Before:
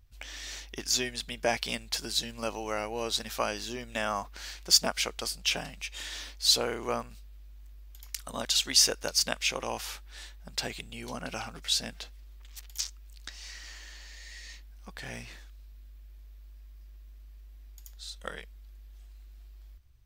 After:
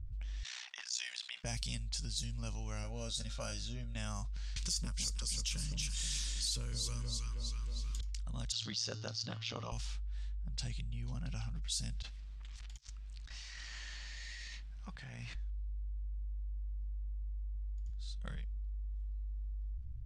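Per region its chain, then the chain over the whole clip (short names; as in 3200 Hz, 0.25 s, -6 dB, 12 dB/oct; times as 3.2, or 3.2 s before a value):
0.43–1.44 HPF 890 Hz 24 dB/oct + high shelf 9900 Hz -6.5 dB + ring modulator 31 Hz
2.83–3.95 resonator 78 Hz, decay 0.15 s, mix 70% + small resonant body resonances 570/1400/3700 Hz, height 12 dB
4.56–8.01 Butterworth band-stop 720 Hz, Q 2.5 + echo with dull and thin repeats by turns 0.159 s, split 950 Hz, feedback 53%, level -3 dB + three-band squash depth 100%
8.52–9.72 de-hum 364 Hz, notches 20 + ring modulator 59 Hz + speaker cabinet 170–4700 Hz, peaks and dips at 240 Hz +6 dB, 370 Hz +5 dB, 530 Hz +5 dB, 770 Hz +3 dB, 1200 Hz +7 dB, 2400 Hz -5 dB
12.02–15.35 HPF 840 Hz 6 dB/oct + negative-ratio compressor -49 dBFS, ratio -0.5
17.89–18.36 HPF 60 Hz + high shelf 9900 Hz +8 dB + Doppler distortion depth 0.1 ms
whole clip: low-pass opened by the level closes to 1500 Hz, open at -24.5 dBFS; EQ curve 130 Hz 0 dB, 360 Hz -27 dB, 1900 Hz -23 dB, 8700 Hz -3 dB, 15000 Hz -22 dB; fast leveller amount 70%; gain -3.5 dB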